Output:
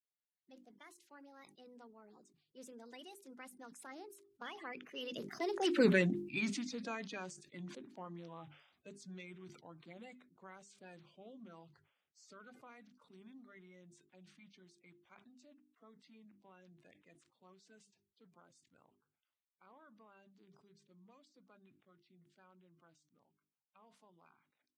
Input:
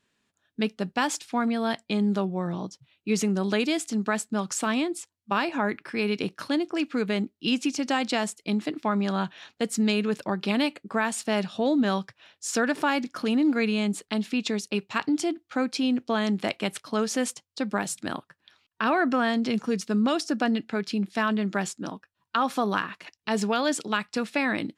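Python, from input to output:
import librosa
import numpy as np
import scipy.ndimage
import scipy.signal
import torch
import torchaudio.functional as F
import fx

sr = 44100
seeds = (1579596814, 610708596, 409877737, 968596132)

y = fx.spec_quant(x, sr, step_db=30)
y = fx.doppler_pass(y, sr, speed_mps=58, closest_m=8.2, pass_at_s=5.85)
y = fx.hum_notches(y, sr, base_hz=50, count=8)
y = fx.sustainer(y, sr, db_per_s=81.0)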